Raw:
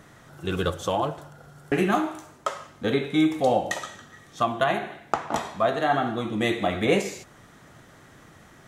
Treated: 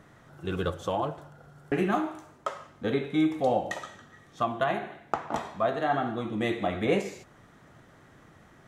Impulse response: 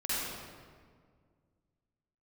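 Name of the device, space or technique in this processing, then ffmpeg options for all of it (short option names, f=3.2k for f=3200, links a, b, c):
behind a face mask: -af "highshelf=f=3.3k:g=-8,volume=-3.5dB"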